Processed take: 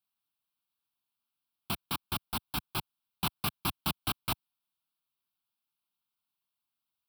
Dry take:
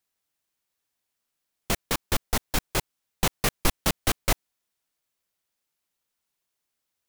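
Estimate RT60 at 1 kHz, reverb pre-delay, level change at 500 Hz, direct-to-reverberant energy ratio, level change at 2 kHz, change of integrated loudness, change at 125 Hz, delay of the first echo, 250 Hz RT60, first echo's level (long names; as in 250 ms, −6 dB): no reverb audible, no reverb audible, −14.5 dB, no reverb audible, −9.5 dB, −7.0 dB, −7.0 dB, no echo audible, no reverb audible, no echo audible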